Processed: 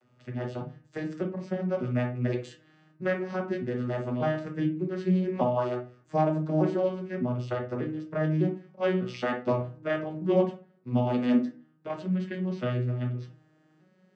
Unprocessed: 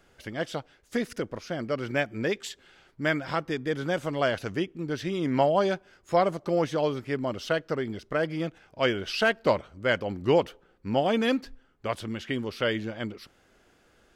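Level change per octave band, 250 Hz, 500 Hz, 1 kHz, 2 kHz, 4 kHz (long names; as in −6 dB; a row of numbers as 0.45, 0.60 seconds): +2.0, −2.5, −4.0, −8.5, −12.5 decibels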